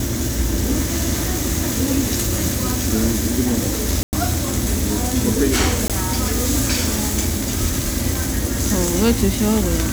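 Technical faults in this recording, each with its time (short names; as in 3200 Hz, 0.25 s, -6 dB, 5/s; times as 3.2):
4.03–4.13 gap 99 ms
5.88–5.9 gap 17 ms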